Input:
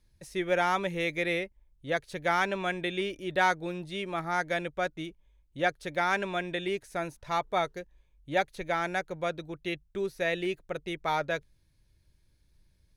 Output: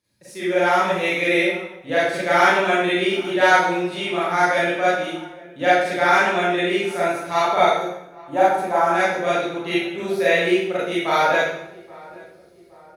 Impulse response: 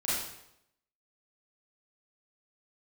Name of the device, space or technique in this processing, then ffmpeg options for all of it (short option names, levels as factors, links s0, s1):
far laptop microphone: -filter_complex "[0:a]asettb=1/sr,asplit=3[s0][s1][s2];[s0]atrim=end=7.724[s3];[s1]atrim=start=7.72:end=8.89,asetpts=PTS-STARTPTS,afade=t=in:d=0.004:c=qsin,afade=t=out:st=1.166:d=0.004:c=qsin,equalizer=f=125:t=o:w=1:g=-5,equalizer=f=500:t=o:w=1:g=-4,equalizer=f=1000:t=o:w=1:g=10,equalizer=f=2000:t=o:w=1:g=-11,equalizer=f=4000:t=o:w=1:g=-11[s4];[s2]atrim=start=8.886[s5];[s3][s4]acrossfade=d=0.004:c1=hsin:c2=qsin[s6];[s6][s5]acrossfade=d=0.004:c1=qsin:c2=hsin[s7];[1:a]atrim=start_sample=2205[s8];[s7][s8]afir=irnorm=-1:irlink=0,highpass=170,dynaudnorm=f=670:g=3:m=2.11,asplit=2[s9][s10];[s10]adelay=821,lowpass=f=1300:p=1,volume=0.0891,asplit=2[s11][s12];[s12]adelay=821,lowpass=f=1300:p=1,volume=0.54,asplit=2[s13][s14];[s14]adelay=821,lowpass=f=1300:p=1,volume=0.54,asplit=2[s15][s16];[s16]adelay=821,lowpass=f=1300:p=1,volume=0.54[s17];[s9][s11][s13][s15][s17]amix=inputs=5:normalize=0"